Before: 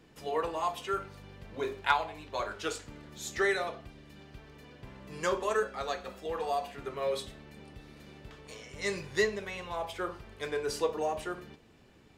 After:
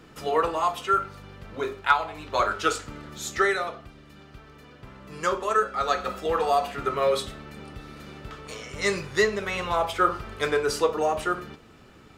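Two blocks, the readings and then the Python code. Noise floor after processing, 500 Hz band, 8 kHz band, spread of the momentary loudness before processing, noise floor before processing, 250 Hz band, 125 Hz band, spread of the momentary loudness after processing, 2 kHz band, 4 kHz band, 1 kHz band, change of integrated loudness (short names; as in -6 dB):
-51 dBFS, +7.0 dB, +6.5 dB, 21 LU, -59 dBFS, +7.0 dB, +7.0 dB, 18 LU, +7.0 dB, +6.5 dB, +9.5 dB, +8.0 dB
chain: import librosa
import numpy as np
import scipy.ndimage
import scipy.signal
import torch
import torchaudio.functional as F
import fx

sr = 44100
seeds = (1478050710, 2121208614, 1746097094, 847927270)

y = fx.peak_eq(x, sr, hz=1300.0, db=11.5, octaves=0.22)
y = fx.rider(y, sr, range_db=10, speed_s=0.5)
y = y * librosa.db_to_amplitude(6.5)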